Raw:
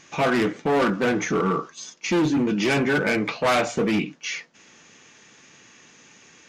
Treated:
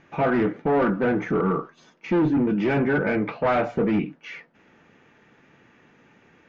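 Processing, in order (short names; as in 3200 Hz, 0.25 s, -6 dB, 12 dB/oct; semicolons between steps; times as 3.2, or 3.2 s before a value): LPF 1600 Hz 12 dB/oct; low shelf 74 Hz +6.5 dB; notch 1100 Hz, Q 13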